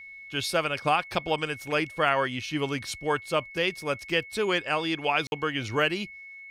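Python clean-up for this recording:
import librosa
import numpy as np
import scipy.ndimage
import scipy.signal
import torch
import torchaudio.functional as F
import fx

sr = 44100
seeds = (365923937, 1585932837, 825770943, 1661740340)

y = fx.notch(x, sr, hz=2200.0, q=30.0)
y = fx.fix_interpolate(y, sr, at_s=(5.27,), length_ms=51.0)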